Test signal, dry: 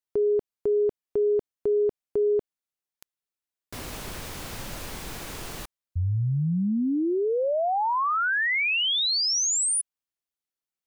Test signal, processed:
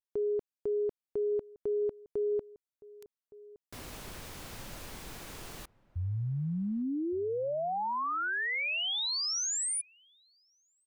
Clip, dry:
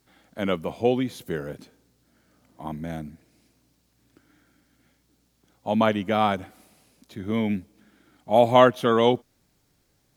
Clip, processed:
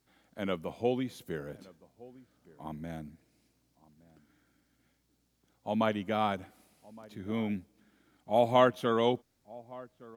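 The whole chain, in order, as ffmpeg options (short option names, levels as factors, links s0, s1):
-filter_complex "[0:a]asplit=2[s0][s1];[s1]adelay=1166,volume=0.0891,highshelf=f=4000:g=-26.2[s2];[s0][s2]amix=inputs=2:normalize=0,volume=0.398"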